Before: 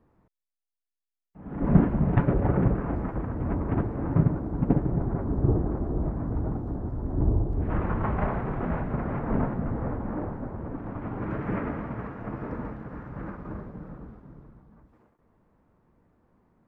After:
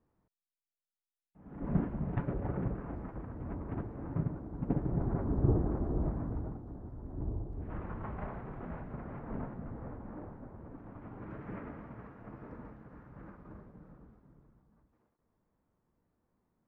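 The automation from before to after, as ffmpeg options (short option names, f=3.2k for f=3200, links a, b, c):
-af "volume=-4.5dB,afade=t=in:st=4.59:d=0.5:silence=0.421697,afade=t=out:st=6.09:d=0.49:silence=0.354813"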